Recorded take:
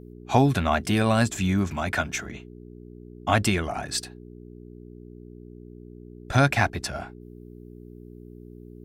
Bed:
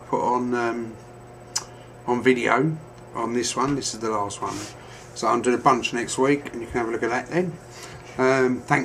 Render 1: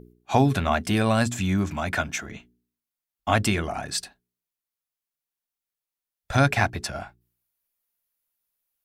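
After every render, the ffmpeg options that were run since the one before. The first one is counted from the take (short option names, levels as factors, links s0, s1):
-af "bandreject=f=60:t=h:w=4,bandreject=f=120:t=h:w=4,bandreject=f=180:t=h:w=4,bandreject=f=240:t=h:w=4,bandreject=f=300:t=h:w=4,bandreject=f=360:t=h:w=4,bandreject=f=420:t=h:w=4"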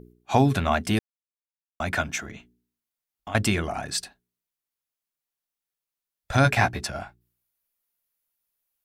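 -filter_complex "[0:a]asettb=1/sr,asplit=3[s0][s1][s2];[s0]atrim=end=2.304[s3];[s1]atrim=start=2.3:end=3.35,asetpts=PTS-STARTPTS,afade=t=in:d=0.004:c=qsin,afade=t=out:st=1.046:d=0.004:c=qsin,acompressor=threshold=0.0141:ratio=3:attack=3.2:release=140:knee=1:detection=peak[s4];[s2]atrim=start=3.346[s5];[s3][s4]acrossfade=d=0.004:c1=hsin:c2=qsin[s6];[s6][s5]acrossfade=d=0.004:c1=qsin:c2=hsin,asettb=1/sr,asplit=3[s7][s8][s9];[s7]atrim=end=6.434[s10];[s8]atrim=start=6.43:end=6.84,asetpts=PTS-STARTPTS,afade=t=in:d=0.004:c=qsin,afade=t=out:st=0.406:d=0.004:c=qsin,asplit=2[s11][s12];[s12]adelay=16,volume=0.562[s13];[s11][s13]amix=inputs=2:normalize=0,atrim=end_sample=18081[s14];[s9]atrim=start=6.836[s15];[s10][s14]acrossfade=d=0.004:c1=hsin:c2=qsin[s16];[s16][s15]acrossfade=d=0.004:c1=qsin:c2=hsin,asplit=3[s17][s18][s19];[s17]atrim=end=0.99,asetpts=PTS-STARTPTS,afade=t=out:st=0.986:d=0.004:c=hsin[s20];[s18]atrim=start=0.99:end=1.8,asetpts=PTS-STARTPTS,volume=0[s21];[s19]atrim=start=1.8,asetpts=PTS-STARTPTS,afade=t=in:d=0.004:c=hsin[s22];[s20][s21][s22]concat=n=3:v=0:a=1"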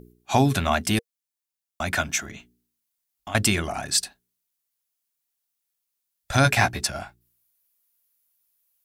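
-af "highshelf=f=3700:g=9.5,bandreject=f=470:w=12"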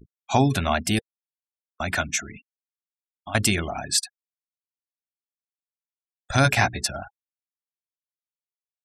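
-af "adynamicequalizer=threshold=0.0126:dfrequency=1200:dqfactor=2.2:tfrequency=1200:tqfactor=2.2:attack=5:release=100:ratio=0.375:range=1.5:mode=cutabove:tftype=bell,afftfilt=real='re*gte(hypot(re,im),0.02)':imag='im*gte(hypot(re,im),0.02)':win_size=1024:overlap=0.75"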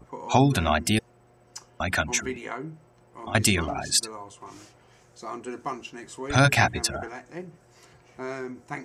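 -filter_complex "[1:a]volume=0.178[s0];[0:a][s0]amix=inputs=2:normalize=0"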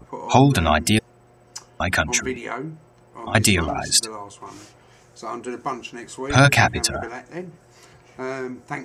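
-af "volume=1.78,alimiter=limit=0.794:level=0:latency=1"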